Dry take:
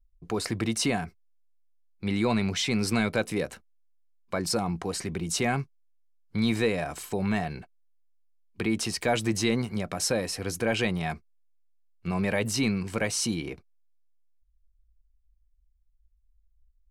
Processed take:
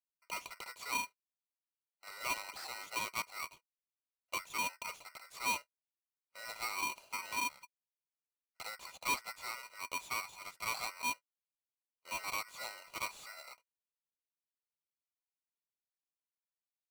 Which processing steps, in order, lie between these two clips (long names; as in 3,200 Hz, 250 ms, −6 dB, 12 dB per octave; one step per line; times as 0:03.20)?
formant filter a
tube saturation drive 33 dB, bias 0.6
Butterworth high-pass 200 Hz
ring modulator with a square carrier 1,700 Hz
level +4 dB